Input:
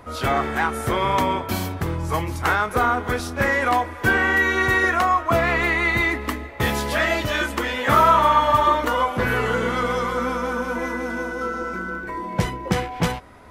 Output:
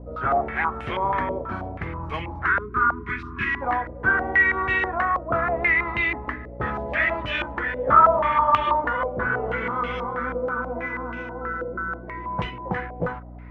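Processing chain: spectral selection erased 2.46–3.62 s, 440–950 Hz; hum 60 Hz, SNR 11 dB; step-sequenced low-pass 6.2 Hz 550–2700 Hz; trim -8 dB

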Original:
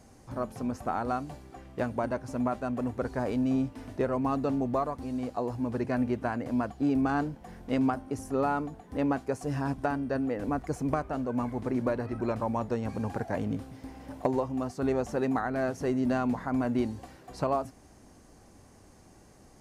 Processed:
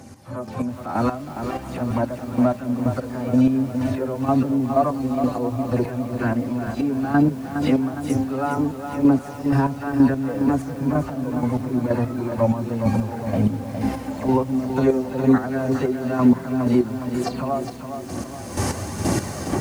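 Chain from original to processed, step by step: delay that grows with frequency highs early, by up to 153 ms; recorder AGC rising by 24 dB/s; high-pass 81 Hz 24 dB/octave; harmonic-percussive split percussive -13 dB; square tremolo 2.1 Hz, depth 65%, duty 30%; tape echo 677 ms, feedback 54%, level -18 dB, low-pass 2.4 kHz; phaser 1.1 Hz, delay 2.6 ms, feedback 34%; loudness maximiser +20 dB; bit-crushed delay 412 ms, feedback 55%, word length 6-bit, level -7.5 dB; trim -6.5 dB

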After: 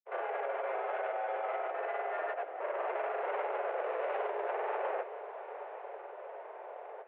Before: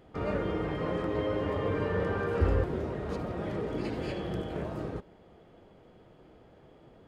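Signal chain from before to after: median filter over 15 samples; compressor with a negative ratio -36 dBFS, ratio -1; saturation -38.5 dBFS, distortion -8 dB; granulator, pitch spread up and down by 0 st; on a send: echo that smears into a reverb 919 ms, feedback 40%, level -13 dB; on the sum: mistuned SSB +230 Hz 190–2500 Hz; trim +8.5 dB

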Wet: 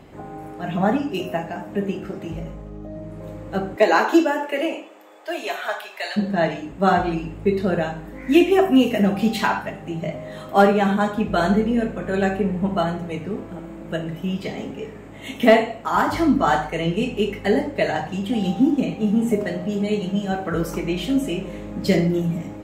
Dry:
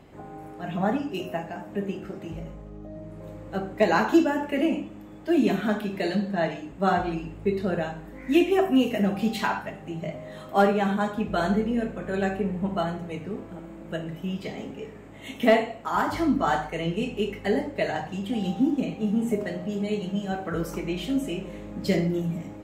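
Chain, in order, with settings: 3.75–6.16 s: high-pass 260 Hz -> 770 Hz 24 dB/octave; trim +5.5 dB

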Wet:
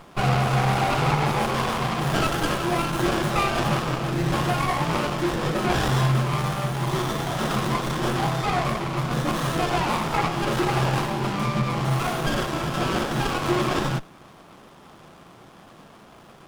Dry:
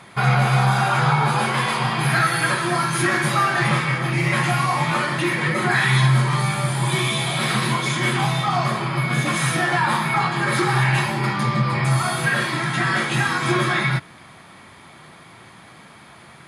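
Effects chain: Bessel high-pass 170 Hz; band-stop 920 Hz, Q 14; sliding maximum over 17 samples

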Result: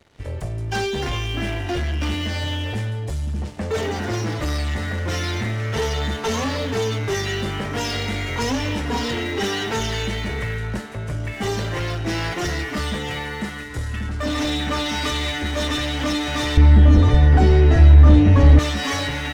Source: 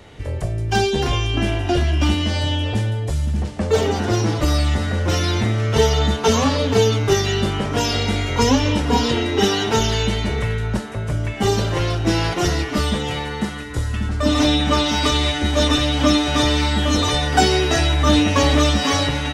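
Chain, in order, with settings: dynamic bell 1.9 kHz, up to +7 dB, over -43 dBFS, Q 2.5; waveshaping leveller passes 3; 16.57–18.59 s: tilt EQ -4.5 dB/octave; trim -15 dB

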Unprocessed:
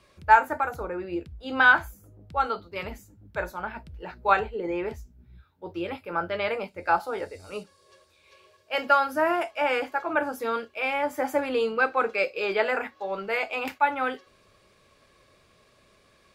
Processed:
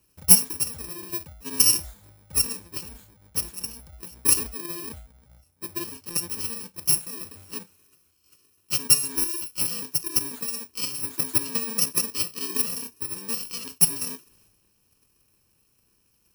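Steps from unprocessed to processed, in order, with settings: bit-reversed sample order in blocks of 64 samples; transient shaper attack +12 dB, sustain +8 dB; trim -7 dB

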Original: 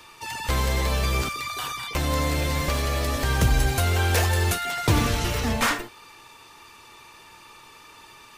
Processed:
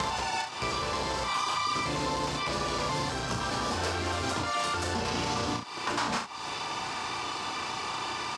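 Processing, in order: slices played last to first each 103 ms, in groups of 6; dynamic bell 1 kHz, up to +6 dB, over -46 dBFS, Q 4.9; in parallel at -2 dB: peak limiter -19.5 dBFS, peak gain reduction 11 dB; on the sum: compression 3:1, threshold -32 dBFS, peak gain reduction 14 dB; hard clipper -27.5 dBFS, distortion -15 dB; harmony voices -7 st -15 dB, -3 st -3 dB; cabinet simulation 140–8200 Hz, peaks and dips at 1.1 kHz +3 dB, 2 kHz -4 dB, 4.9 kHz +5 dB; early reflections 34 ms -4.5 dB, 69 ms -9.5 dB; three bands compressed up and down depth 70%

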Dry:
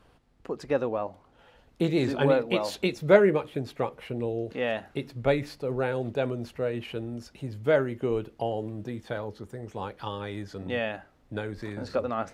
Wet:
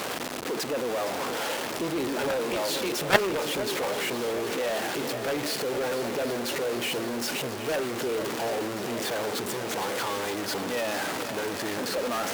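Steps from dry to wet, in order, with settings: jump at every zero crossing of -18.5 dBFS; high-pass 260 Hz 12 dB/octave; shuffle delay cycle 771 ms, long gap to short 1.5:1, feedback 61%, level -11.5 dB; Chebyshev shaper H 3 -6 dB, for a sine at -4.5 dBFS; trim +1 dB

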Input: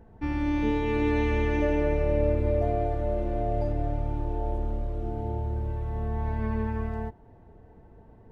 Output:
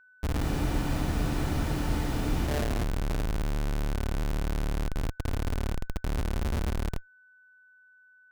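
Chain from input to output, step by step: Schmitt trigger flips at -24.5 dBFS; whistle 1.5 kHz -56 dBFS; spectral freeze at 0.44 s, 2.03 s

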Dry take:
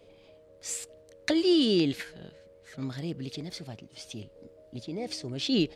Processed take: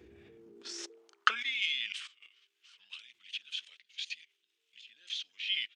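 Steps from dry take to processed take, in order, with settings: level held to a coarse grid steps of 15 dB; high-pass sweep 100 Hz -> 3.9 kHz, 0.13–1.59 s; pitch shift -5.5 st; trim +2.5 dB

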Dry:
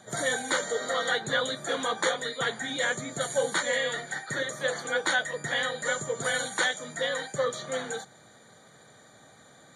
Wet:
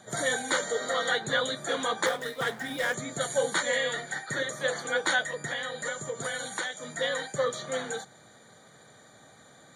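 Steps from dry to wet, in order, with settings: 2.06–2.94 s: median filter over 9 samples; 5.32–6.83 s: compression, threshold -30 dBFS, peak gain reduction 8 dB

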